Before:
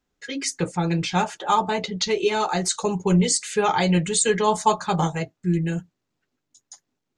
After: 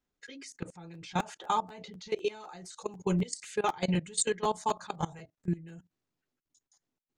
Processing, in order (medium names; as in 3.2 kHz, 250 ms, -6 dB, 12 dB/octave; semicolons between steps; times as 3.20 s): level held to a coarse grid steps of 20 dB; crackling interface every 0.25 s, samples 512, repeat, from 0.68 s; trim -6.5 dB